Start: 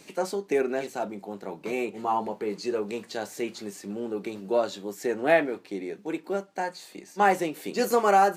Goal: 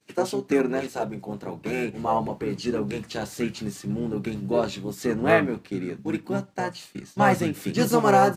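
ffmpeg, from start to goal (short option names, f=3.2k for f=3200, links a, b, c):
-filter_complex "[0:a]asubboost=boost=4.5:cutoff=200,asplit=2[a][b];[b]asetrate=29433,aresample=44100,atempo=1.49831,volume=-5dB[c];[a][c]amix=inputs=2:normalize=0,agate=range=-33dB:threshold=-41dB:ratio=3:detection=peak,volume=2dB"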